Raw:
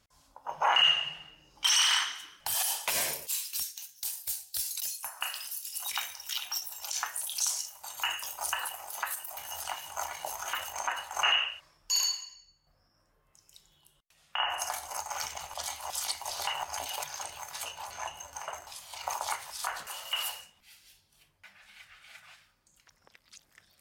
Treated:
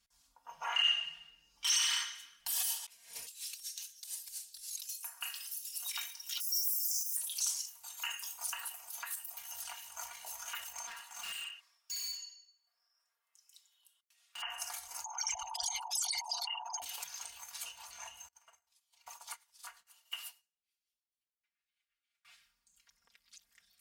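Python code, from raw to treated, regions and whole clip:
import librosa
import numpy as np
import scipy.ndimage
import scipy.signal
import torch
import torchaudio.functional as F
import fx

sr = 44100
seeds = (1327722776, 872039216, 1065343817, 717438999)

y = fx.chain(x, sr, fx.lowpass(hz=11000.0, slope=12),
    fx.over_compress(threshold_db=-41.0, ratio=-0.5), at=(2.82, 4.89))
y = fx.chain(y, sr, fx.crossing_spikes(level_db=-28.0),
    fx.brickwall_bandstop(low_hz=320.0, high_hz=4700.0),
    fx.peak_eq(hz=130.0, db=6.0, octaves=0.79), at=(6.4, 7.17))
y = fx.chain(y, sr, fx.highpass(hz=620.0, slope=24),
    fx.overload_stage(gain_db=34.5), at=(10.87, 14.42))
y = fx.chain(y, sr, fx.envelope_sharpen(power=3.0),
    fx.env_flatten(amount_pct=100), at=(15.04, 16.82))
y = fx.chain(y, sr, fx.echo_single(ms=101, db=-14.5),
    fx.upward_expand(threshold_db=-48.0, expansion=2.5), at=(18.28, 22.25))
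y = fx.tone_stack(y, sr, knobs='5-5-5')
y = y + 0.78 * np.pad(y, (int(4.3 * sr / 1000.0), 0))[:len(y)]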